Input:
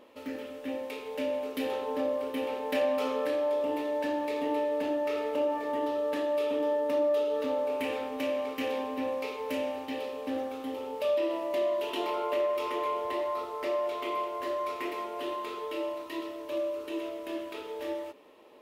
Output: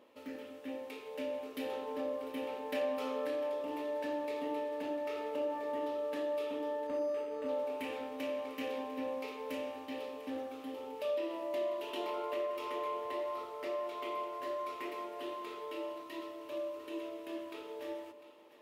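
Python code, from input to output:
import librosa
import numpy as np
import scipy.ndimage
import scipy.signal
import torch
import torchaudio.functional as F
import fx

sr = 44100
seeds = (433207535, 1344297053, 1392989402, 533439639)

p1 = scipy.signal.sosfilt(scipy.signal.butter(2, 78.0, 'highpass', fs=sr, output='sos'), x)
p2 = p1 + fx.echo_split(p1, sr, split_hz=870.0, low_ms=187, high_ms=699, feedback_pct=52, wet_db=-15, dry=0)
p3 = fx.resample_linear(p2, sr, factor=8, at=(6.87, 7.49))
y = p3 * 10.0 ** (-7.0 / 20.0)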